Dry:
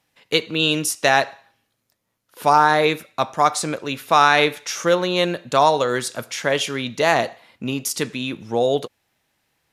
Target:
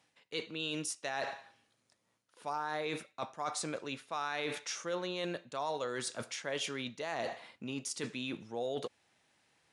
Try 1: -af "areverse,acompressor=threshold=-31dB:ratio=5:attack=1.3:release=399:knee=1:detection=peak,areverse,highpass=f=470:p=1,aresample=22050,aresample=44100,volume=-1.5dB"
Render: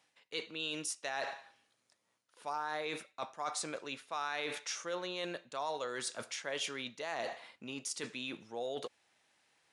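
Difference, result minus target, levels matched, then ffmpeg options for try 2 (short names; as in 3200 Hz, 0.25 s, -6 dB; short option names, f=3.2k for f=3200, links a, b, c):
125 Hz band -6.5 dB
-af "areverse,acompressor=threshold=-31dB:ratio=5:attack=1.3:release=399:knee=1:detection=peak,areverse,highpass=f=140:p=1,aresample=22050,aresample=44100,volume=-1.5dB"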